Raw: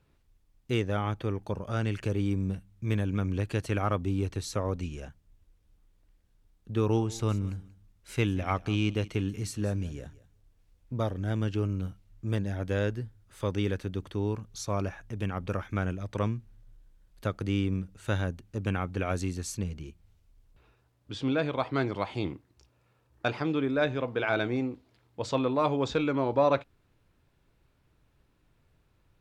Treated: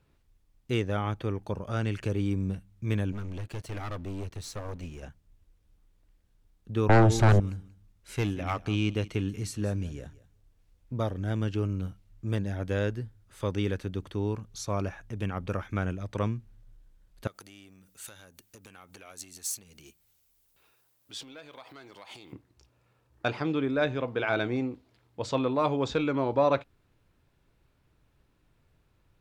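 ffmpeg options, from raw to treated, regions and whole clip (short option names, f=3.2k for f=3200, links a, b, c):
-filter_complex "[0:a]asettb=1/sr,asplit=3[a][b][c];[a]atrim=end=3.124[d];[b]atrim=start=3.12:end=5.03,asetpts=PTS-STARTPTS,afade=t=in:d=0.004:c=qsin,afade=t=out:st=1.906:d=0.004:c=qsin,aeval=exprs='sgn(val(0))*max(abs(val(0))-0.002,0)':c=same,aeval=exprs='(tanh(39.8*val(0)+0.35)-tanh(0.35))/39.8':c=same[e];[c]atrim=start=5.026[f];[d][e]acrossfade=d=0.004:c1=hsin:c2=qsin[g];[g][f]acrossfade=d=0.004:c1=qsin:c2=hsin,asettb=1/sr,asplit=3[h][i][j];[h]atrim=end=6.894[k];[i]atrim=start=6.89:end=7.4,asetpts=PTS-STARTPTS,afade=t=in:d=0.004:c=qsin,afade=t=out:st=0.506:d=0.004:c=qsin,highshelf=f=2k:g=-11.5,aeval=exprs='0.178*sin(PI/2*3.98*val(0)/0.178)':c=same[l];[j]atrim=start=7.396[m];[k][l]acrossfade=d=0.004:c1=hsin:c2=qsin[n];[n][m]acrossfade=d=0.004:c1=qsin:c2=hsin,asettb=1/sr,asplit=3[o][p][q];[o]atrim=end=8.144[r];[p]atrim=start=8.14:end=8.59,asetpts=PTS-STARTPTS,afade=t=in:d=0.004:c=qsin,afade=t=out:st=0.446:d=0.004:c=qsin,deesser=0.85,bandreject=f=94.05:t=h:w=4,bandreject=f=188.1:t=h:w=4,bandreject=f=282.15:t=h:w=4,aeval=exprs='clip(val(0),-1,0.0841)':c=same[s];[q]atrim=start=8.586[t];[r][s]acrossfade=d=0.004:c1=hsin:c2=qsin[u];[u][t]acrossfade=d=0.004:c1=qsin:c2=hsin,asettb=1/sr,asplit=3[v][w][x];[v]atrim=end=17.274[y];[w]atrim=start=17.27:end=22.33,asetpts=PTS-STARTPTS,afade=t=in:d=0.004:c=qsin,afade=t=out:st=5.056:d=0.004:c=qsin,acompressor=threshold=-37dB:ratio=12:attack=3.2:release=140:knee=1:detection=peak,aeval=exprs='(tanh(20*val(0)+0.55)-tanh(0.55))/20':c=same,aemphasis=mode=production:type=riaa[z];[x]atrim=start=22.326[aa];[y][z]acrossfade=d=0.004:c1=hsin:c2=qsin[ab];[ab][aa]acrossfade=d=0.004:c1=qsin:c2=hsin"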